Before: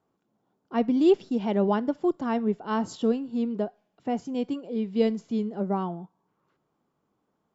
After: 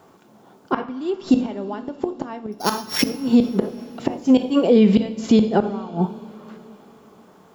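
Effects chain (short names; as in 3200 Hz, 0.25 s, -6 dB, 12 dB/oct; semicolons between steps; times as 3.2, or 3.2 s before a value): 2.52–3.09 sample sorter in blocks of 8 samples; low shelf 270 Hz -6.5 dB; flipped gate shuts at -23 dBFS, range -30 dB; two-slope reverb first 0.41 s, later 4.5 s, from -21 dB, DRR 9 dB; maximiser +30.5 dB; gain -5 dB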